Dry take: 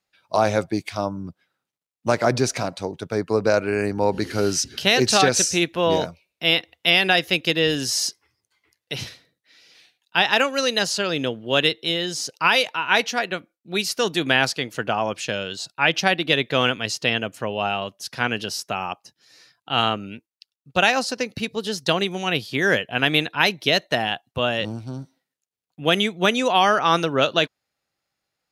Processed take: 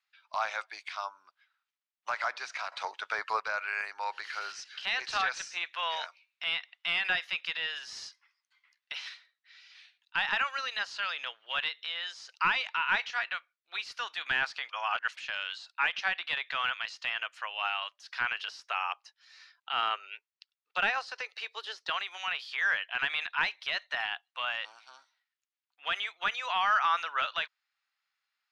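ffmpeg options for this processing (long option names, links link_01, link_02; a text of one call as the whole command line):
ffmpeg -i in.wav -filter_complex "[0:a]asettb=1/sr,asplit=3[link_01][link_02][link_03];[link_01]atrim=end=18.484[link_04];[link_02]atrim=start=18.48:end=21.9,asetpts=PTS-STARTPTS,afade=type=in:duration=0.004:curve=qsin,afade=type=out:start_time=3.416:duration=0.004:curve=qsin,highpass=frequency=400:width_type=q:width=3.5[link_05];[link_03]atrim=start=21.896[link_06];[link_04][link_05]acrossfade=duration=0.004:curve1=hsin:curve2=qsin[link_07];[link_07][link_06]acrossfade=duration=0.004:curve1=qsin:curve2=hsin,asplit=5[link_08][link_09][link_10][link_11][link_12];[link_08]atrim=end=2.722[link_13];[link_09]atrim=start=2.718:end=3.402,asetpts=PTS-STARTPTS,volume=11dB[link_14];[link_10]atrim=start=3.398:end=14.692[link_15];[link_11]atrim=start=14.688:end=15.172,asetpts=PTS-STARTPTS,areverse[link_16];[link_12]atrim=start=15.168[link_17];[link_13][link_14]acrossfade=duration=0.004:curve1=hsin:curve2=hsin[link_18];[link_18][link_15]acrossfade=duration=0.004:curve1=hsin:curve2=hsin[link_19];[link_19][link_16]acrossfade=duration=0.004:curve1=hsin:curve2=hsin[link_20];[link_20][link_17]acrossfade=duration=0.004:curve1=hsin:curve2=hsin,highpass=frequency=1100:width=0.5412,highpass=frequency=1100:width=1.3066,deesser=0.95,lowpass=3900" out.wav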